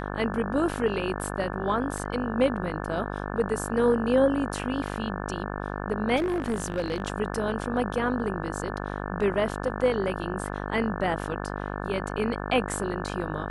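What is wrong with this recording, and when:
buzz 50 Hz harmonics 35 -33 dBFS
1.98 s: dropout 2.7 ms
6.16–7.02 s: clipped -22.5 dBFS

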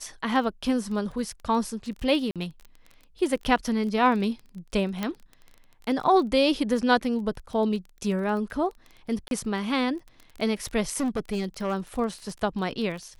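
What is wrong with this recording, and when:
crackle 24 per s -34 dBFS
2.31–2.36 s: dropout 47 ms
5.03 s: pop -14 dBFS
9.28–9.31 s: dropout 32 ms
10.96–11.74 s: clipped -23 dBFS

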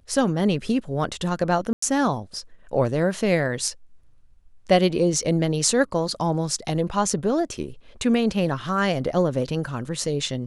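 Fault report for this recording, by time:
1.73–1.82 s: dropout 94 ms

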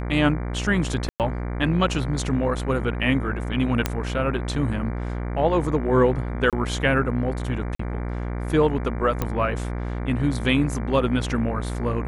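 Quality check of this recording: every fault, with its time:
buzz 60 Hz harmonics 39 -28 dBFS
1.09–1.20 s: dropout 108 ms
3.86 s: pop -6 dBFS
6.50–6.53 s: dropout 27 ms
7.75–7.79 s: dropout 44 ms
9.22 s: pop -10 dBFS

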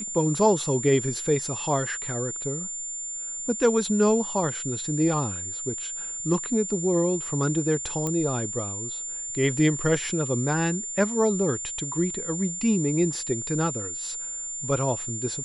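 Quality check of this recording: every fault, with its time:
whine 7.2 kHz -31 dBFS
8.07 s: pop -15 dBFS

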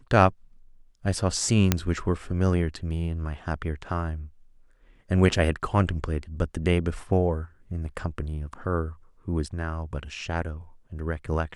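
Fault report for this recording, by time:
1.72 s: pop -4 dBFS

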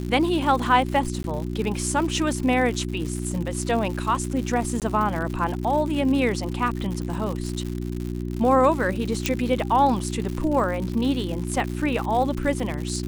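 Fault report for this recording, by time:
crackle 150 per s -29 dBFS
hum 60 Hz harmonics 6 -29 dBFS
1.23–1.24 s: dropout 11 ms
4.80–4.82 s: dropout 18 ms
9.26 s: pop -7 dBFS

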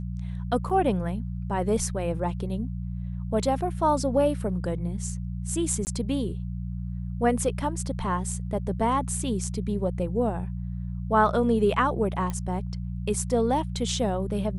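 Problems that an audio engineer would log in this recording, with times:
hum 60 Hz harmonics 3 -32 dBFS
0.69–0.70 s: dropout 6.4 ms
5.85–5.87 s: dropout 19 ms
12.30 s: pop -18 dBFS

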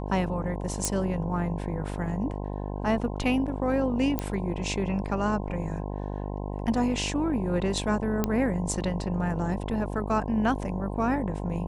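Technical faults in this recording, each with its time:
buzz 50 Hz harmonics 21 -33 dBFS
0.85 s: pop -10 dBFS
4.19 s: pop -13 dBFS
8.24 s: pop -11 dBFS

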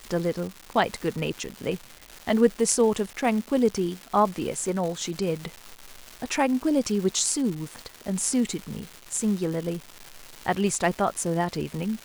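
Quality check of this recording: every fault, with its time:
crackle 490 per s -32 dBFS

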